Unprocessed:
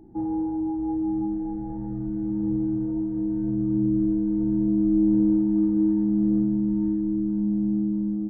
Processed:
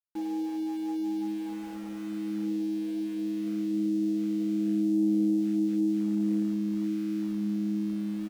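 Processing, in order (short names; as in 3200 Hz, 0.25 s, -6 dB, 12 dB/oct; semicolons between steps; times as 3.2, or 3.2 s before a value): outdoor echo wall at 290 m, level -27 dB; FFT band-pass 200–870 Hz; sample gate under -37.5 dBFS; gain -5 dB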